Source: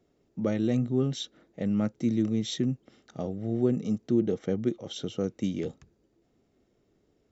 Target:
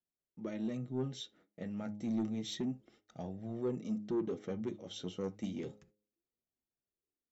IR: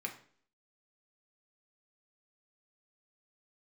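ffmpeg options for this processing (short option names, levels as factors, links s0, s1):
-filter_complex "[0:a]agate=range=0.1:threshold=0.00158:ratio=16:detection=peak,dynaudnorm=f=650:g=5:m=1.5,flanger=delay=1.1:depth=9.9:regen=33:speed=0.3:shape=sinusoidal,bandreject=f=104.1:t=h:w=4,bandreject=f=208.2:t=h:w=4,bandreject=f=312.3:t=h:w=4,bandreject=f=416.4:t=h:w=4,bandreject=f=520.5:t=h:w=4,bandreject=f=624.6:t=h:w=4,bandreject=f=728.7:t=h:w=4,bandreject=f=832.8:t=h:w=4,asoftclip=type=tanh:threshold=0.0794,asplit=2[s0][s1];[1:a]atrim=start_sample=2205,atrim=end_sample=3528[s2];[s1][s2]afir=irnorm=-1:irlink=0,volume=0.355[s3];[s0][s3]amix=inputs=2:normalize=0,volume=0.376"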